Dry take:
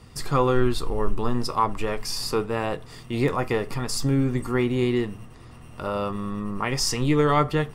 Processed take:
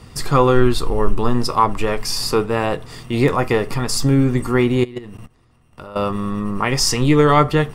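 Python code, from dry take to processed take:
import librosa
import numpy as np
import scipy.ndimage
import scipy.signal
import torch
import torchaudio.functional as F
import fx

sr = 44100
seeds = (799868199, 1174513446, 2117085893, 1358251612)

y = fx.level_steps(x, sr, step_db=21, at=(4.83, 5.96))
y = y * librosa.db_to_amplitude(7.0)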